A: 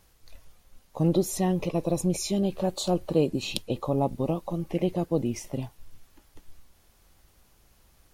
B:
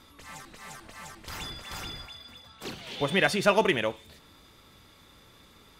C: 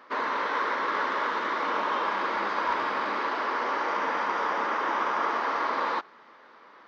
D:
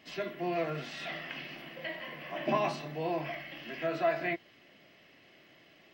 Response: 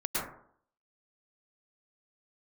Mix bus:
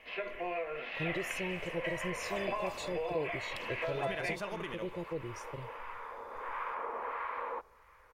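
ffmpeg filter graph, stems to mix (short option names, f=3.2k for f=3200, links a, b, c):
-filter_complex "[0:a]equalizer=f=11k:w=0.55:g=-5,aecho=1:1:2.1:0.8,volume=-13dB,asplit=2[a][b];[1:a]adelay=950,volume=-14dB[c];[2:a]acrossover=split=930[d][e];[d]aeval=exprs='val(0)*(1-0.7/2+0.7/2*cos(2*PI*1.5*n/s))':c=same[f];[e]aeval=exprs='val(0)*(1-0.7/2-0.7/2*cos(2*PI*1.5*n/s))':c=same[g];[f][g]amix=inputs=2:normalize=0,adelay=1600,volume=-8.5dB,afade=t=in:st=6.3:d=0.39:silence=0.375837[h];[3:a]aemphasis=mode=production:type=bsi,volume=1dB[i];[b]apad=whole_len=373851[j];[h][j]sidechaincompress=threshold=-44dB:ratio=8:attack=16:release=117[k];[k][i]amix=inputs=2:normalize=0,highpass=240,equalizer=f=310:t=q:w=4:g=-8,equalizer=f=490:t=q:w=4:g=10,equalizer=f=1k:t=q:w=4:g=5,equalizer=f=2.4k:t=q:w=4:g=7,lowpass=f=2.7k:w=0.5412,lowpass=f=2.7k:w=1.3066,acompressor=threshold=-34dB:ratio=6,volume=0dB[l];[a][c]amix=inputs=2:normalize=0,alimiter=level_in=5dB:limit=-24dB:level=0:latency=1:release=85,volume=-5dB,volume=0dB[m];[l][m]amix=inputs=2:normalize=0"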